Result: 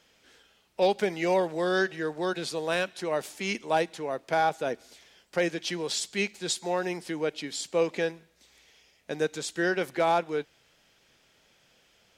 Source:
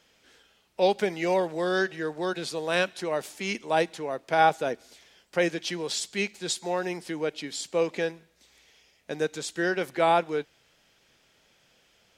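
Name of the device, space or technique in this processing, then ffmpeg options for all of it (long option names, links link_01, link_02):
limiter into clipper: -af "alimiter=limit=-13dB:level=0:latency=1:release=331,asoftclip=type=hard:threshold=-15.5dB"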